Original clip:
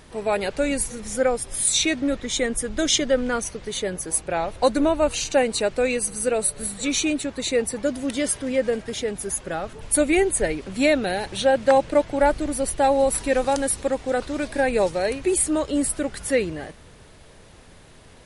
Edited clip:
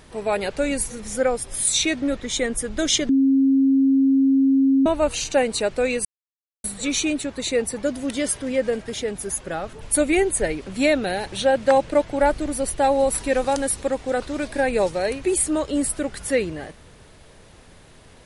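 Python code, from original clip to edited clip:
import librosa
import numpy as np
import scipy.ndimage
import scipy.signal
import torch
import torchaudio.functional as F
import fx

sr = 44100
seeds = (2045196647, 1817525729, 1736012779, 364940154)

y = fx.edit(x, sr, fx.bleep(start_s=3.09, length_s=1.77, hz=270.0, db=-13.5),
    fx.silence(start_s=6.05, length_s=0.59), tone=tone)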